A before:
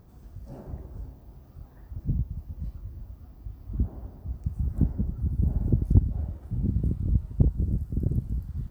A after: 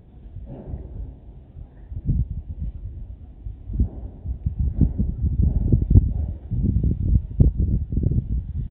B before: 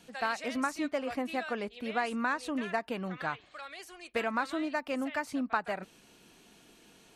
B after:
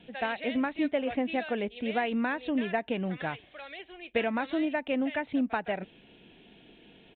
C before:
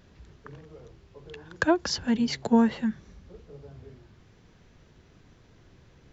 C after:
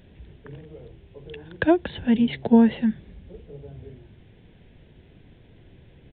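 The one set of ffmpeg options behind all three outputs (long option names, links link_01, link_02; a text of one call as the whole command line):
ffmpeg -i in.wav -af "equalizer=frequency=1200:width_type=o:width=0.72:gain=-13.5,aresample=8000,aresample=44100,volume=5.5dB" out.wav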